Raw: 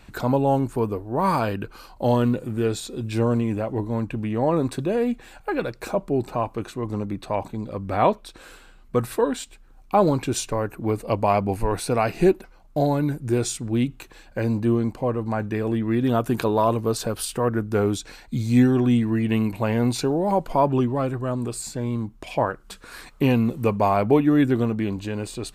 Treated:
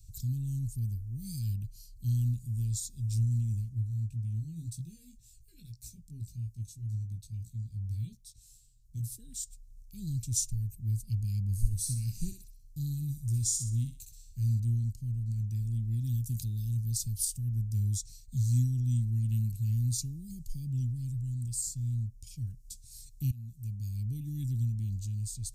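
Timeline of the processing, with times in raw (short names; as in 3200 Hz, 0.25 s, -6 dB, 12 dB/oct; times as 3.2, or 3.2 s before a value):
3.69–9.16 chorus 1.8 Hz, delay 17 ms, depth 2.2 ms
11.51–14.6 thinning echo 63 ms, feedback 37%, high-pass 500 Hz, level -5 dB
23.31–24.31 fade in, from -20 dB
whole clip: Chebyshev band-stop 110–5900 Hz, order 3; dynamic EQ 220 Hz, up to +4 dB, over -50 dBFS, Q 1.4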